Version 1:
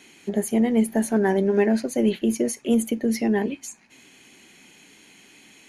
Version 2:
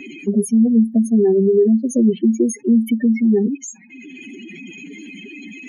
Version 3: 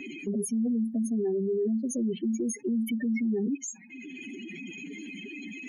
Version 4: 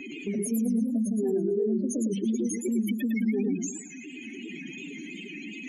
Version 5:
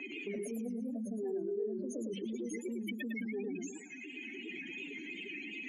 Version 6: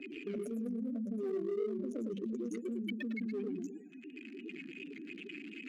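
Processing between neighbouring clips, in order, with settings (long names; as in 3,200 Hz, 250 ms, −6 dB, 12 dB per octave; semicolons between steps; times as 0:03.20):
expanding power law on the bin magnitudes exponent 3.8; multiband upward and downward compressor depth 40%; level +7.5 dB
brickwall limiter −18 dBFS, peak gain reduction 12 dB; level −5 dB
feedback echo with a swinging delay time 111 ms, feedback 42%, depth 207 cents, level −5 dB
three-way crossover with the lows and the highs turned down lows −17 dB, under 350 Hz, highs −16 dB, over 3,400 Hz; in parallel at −1.5 dB: compressor whose output falls as the input rises −38 dBFS, ratio −0.5; on the sum: level −6.5 dB
adaptive Wiener filter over 41 samples; parametric band 920 Hz −13 dB 0.3 octaves; level +2 dB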